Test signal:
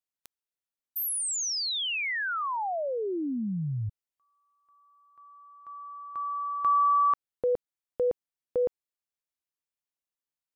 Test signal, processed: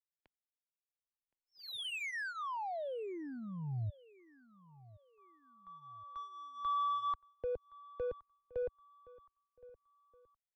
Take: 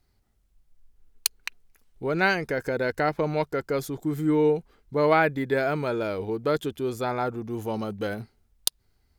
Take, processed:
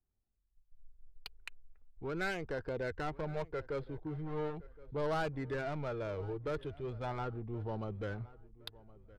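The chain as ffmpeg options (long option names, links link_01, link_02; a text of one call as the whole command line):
ffmpeg -i in.wav -filter_complex "[0:a]agate=range=-10dB:threshold=-51dB:ratio=3:release=252:detection=rms,aresample=11025,asoftclip=type=tanh:threshold=-22.5dB,aresample=44100,asubboost=boost=7:cutoff=78,acrossover=split=120|2500[link_01][link_02][link_03];[link_01]acompressor=threshold=-32dB:ratio=6:attack=0.3:release=119:knee=2.83:detection=peak[link_04];[link_04][link_02][link_03]amix=inputs=3:normalize=0,lowpass=frequency=4300:width=0.5412,lowpass=frequency=4300:width=1.3066,adynamicsmooth=sensitivity=6:basefreq=1500,flanger=delay=0.2:depth=2:regen=-51:speed=0.39:shape=sinusoidal,asplit=2[link_05][link_06];[link_06]adelay=1069,lowpass=frequency=2800:poles=1,volume=-20.5dB,asplit=2[link_07][link_08];[link_08]adelay=1069,lowpass=frequency=2800:poles=1,volume=0.39,asplit=2[link_09][link_10];[link_10]adelay=1069,lowpass=frequency=2800:poles=1,volume=0.39[link_11];[link_07][link_09][link_11]amix=inputs=3:normalize=0[link_12];[link_05][link_12]amix=inputs=2:normalize=0,volume=-4.5dB" out.wav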